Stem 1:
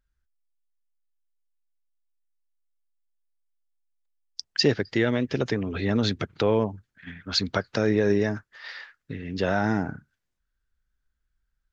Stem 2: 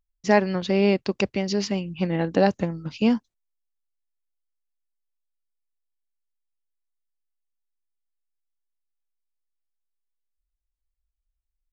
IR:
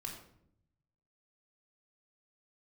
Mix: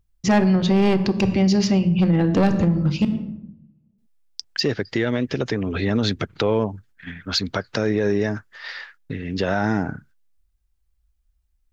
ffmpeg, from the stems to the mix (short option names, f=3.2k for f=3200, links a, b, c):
-filter_complex "[0:a]agate=range=-22dB:threshold=-54dB:ratio=16:detection=peak,volume=-0.5dB[a];[1:a]equalizer=f=110:t=o:w=2.4:g=11,bandreject=f=420:w=12,asoftclip=type=hard:threshold=-10.5dB,volume=0dB,asplit=3[b][c][d];[b]atrim=end=3.05,asetpts=PTS-STARTPTS,afade=t=out:st=3.046:d=0.004:c=hsin[e];[c]atrim=start=3.05:end=3.98,asetpts=PTS-STARTPTS,volume=0[f];[d]atrim=start=3.98,asetpts=PTS-STARTPTS,afade=t=in:d=0.004:c=hsin[g];[e][f][g]concat=n=3:v=0:a=1,asplit=2[h][i];[i]volume=-4dB[j];[2:a]atrim=start_sample=2205[k];[j][k]afir=irnorm=-1:irlink=0[l];[a][h][l]amix=inputs=3:normalize=0,acontrast=51,alimiter=limit=-11.5dB:level=0:latency=1:release=160"